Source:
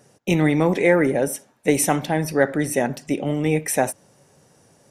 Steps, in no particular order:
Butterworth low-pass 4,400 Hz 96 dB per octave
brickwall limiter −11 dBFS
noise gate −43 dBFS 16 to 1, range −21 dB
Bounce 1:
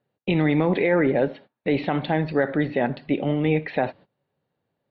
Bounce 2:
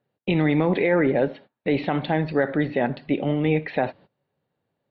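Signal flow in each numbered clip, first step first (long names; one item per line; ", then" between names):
Butterworth low-pass, then brickwall limiter, then noise gate
Butterworth low-pass, then noise gate, then brickwall limiter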